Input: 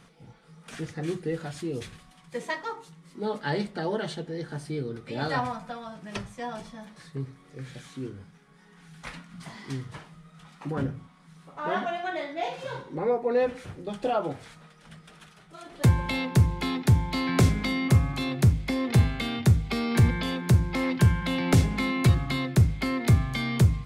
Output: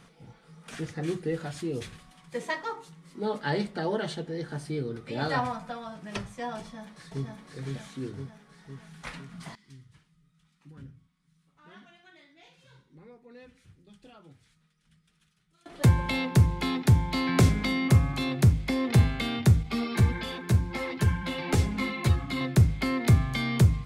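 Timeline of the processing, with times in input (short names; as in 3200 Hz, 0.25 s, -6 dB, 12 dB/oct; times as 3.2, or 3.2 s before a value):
6.6–7.27 echo throw 0.51 s, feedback 60%, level -2 dB
9.55–15.66 passive tone stack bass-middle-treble 6-0-2
19.63–22.41 ensemble effect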